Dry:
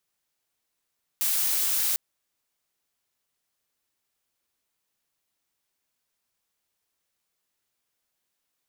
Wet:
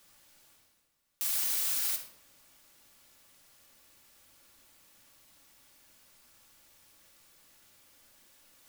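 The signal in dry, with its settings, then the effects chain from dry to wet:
noise blue, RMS -25 dBFS 0.75 s
peak limiter -22.5 dBFS; reverse; upward compressor, threshold -48 dBFS; reverse; simulated room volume 2100 m³, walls furnished, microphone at 2.4 m

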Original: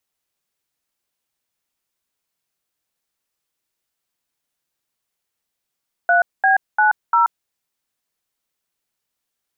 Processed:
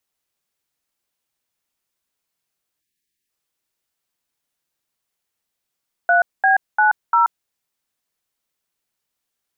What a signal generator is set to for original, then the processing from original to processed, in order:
DTMF "3B90", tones 130 ms, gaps 217 ms, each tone -14 dBFS
spectral selection erased 2.80–3.29 s, 430–1600 Hz

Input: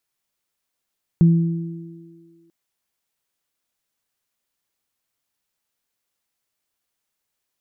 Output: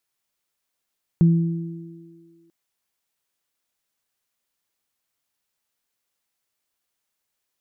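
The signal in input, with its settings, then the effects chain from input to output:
additive tone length 1.29 s, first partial 167 Hz, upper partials -16 dB, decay 1.41 s, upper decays 2.56 s, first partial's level -8 dB
bass shelf 330 Hz -2.5 dB

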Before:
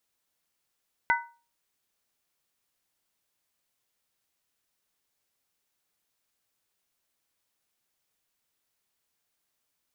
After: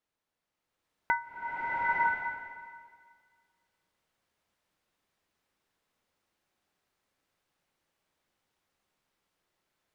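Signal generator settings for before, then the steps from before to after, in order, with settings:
skin hit, lowest mode 939 Hz, modes 3, decay 0.36 s, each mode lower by 0.5 dB, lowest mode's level -20.5 dB
low-pass 1.7 kHz 6 dB/octave; hum notches 60/120 Hz; swelling reverb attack 920 ms, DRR -6.5 dB

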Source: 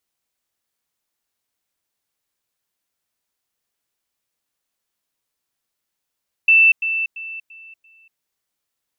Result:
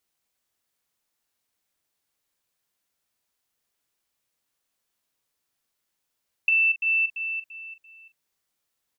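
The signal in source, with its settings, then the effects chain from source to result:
level ladder 2.66 kHz -8.5 dBFS, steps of -10 dB, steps 5, 0.24 s 0.10 s
compression 6:1, threshold -22 dBFS; doubling 41 ms -11 dB

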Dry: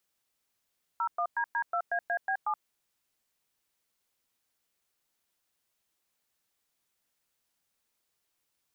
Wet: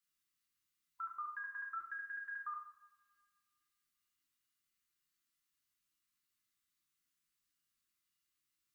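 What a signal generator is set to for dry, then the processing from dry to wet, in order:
DTMF "01DD2AAB7", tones 75 ms, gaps 108 ms, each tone -29.5 dBFS
brick-wall FIR band-stop 360–1000 Hz; feedback comb 410 Hz, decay 0.32 s, harmonics odd, mix 70%; two-slope reverb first 0.61 s, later 2.2 s, from -24 dB, DRR -0.5 dB

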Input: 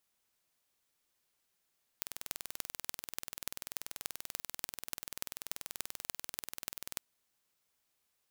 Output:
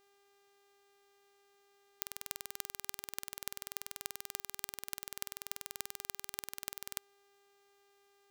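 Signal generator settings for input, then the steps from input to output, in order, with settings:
pulse train 20.6 per s, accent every 6, -7.5 dBFS 5.00 s
mains buzz 400 Hz, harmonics 20, -70 dBFS -5 dB/octave

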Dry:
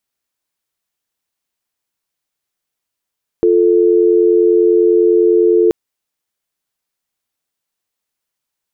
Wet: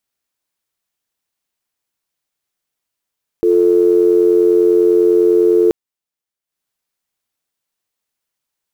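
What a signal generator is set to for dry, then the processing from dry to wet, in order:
call progress tone dial tone, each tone -10.5 dBFS 2.28 s
block-companded coder 7-bit; transient shaper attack -3 dB, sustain -8 dB

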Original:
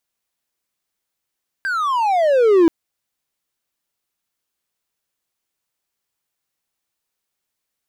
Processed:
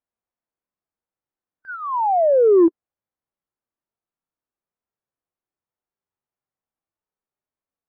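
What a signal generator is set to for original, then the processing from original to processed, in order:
gliding synth tone triangle, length 1.03 s, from 1.61 kHz, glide -28 st, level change +11 dB, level -6 dB
low-pass 1.2 kHz 12 dB/octave; harmonic-percussive split percussive -17 dB

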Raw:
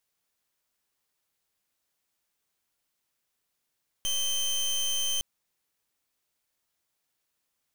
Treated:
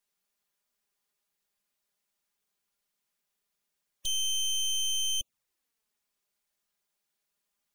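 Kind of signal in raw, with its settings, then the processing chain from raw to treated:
pulse 3.11 kHz, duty 23% -28 dBFS 1.16 s
spectral gate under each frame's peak -25 dB strong; touch-sensitive flanger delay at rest 5 ms, full sweep at -31.5 dBFS

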